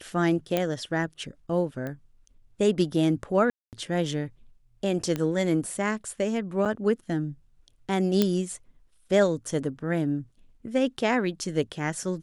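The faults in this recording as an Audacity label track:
0.570000	0.570000	pop -11 dBFS
1.870000	1.870000	pop -22 dBFS
3.500000	3.730000	gap 0.228 s
5.160000	5.160000	pop -16 dBFS
6.650000	6.660000	gap 6.8 ms
8.220000	8.220000	pop -8 dBFS

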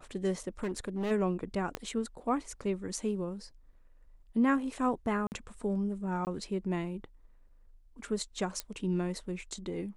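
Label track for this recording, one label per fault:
0.630000	1.120000	clipped -29.5 dBFS
1.750000	1.750000	pop -18 dBFS
5.270000	5.320000	gap 49 ms
6.250000	6.270000	gap 19 ms
8.600000	8.600000	pop -18 dBFS

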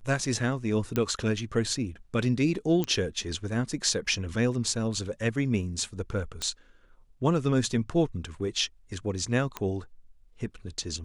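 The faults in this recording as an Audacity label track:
0.960000	0.960000	pop -14 dBFS
2.840000	2.840000	pop -15 dBFS
6.420000	6.420000	pop -17 dBFS
9.570000	9.570000	pop -16 dBFS

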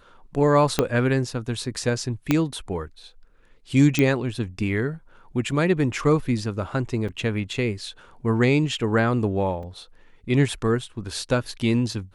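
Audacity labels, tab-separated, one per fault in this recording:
0.790000	0.790000	pop -5 dBFS
2.310000	2.310000	pop -6 dBFS
3.990000	3.990000	pop -7 dBFS
5.510000	5.510000	gap 2.2 ms
7.080000	7.090000	gap 5.6 ms
9.630000	9.630000	gap 3.3 ms

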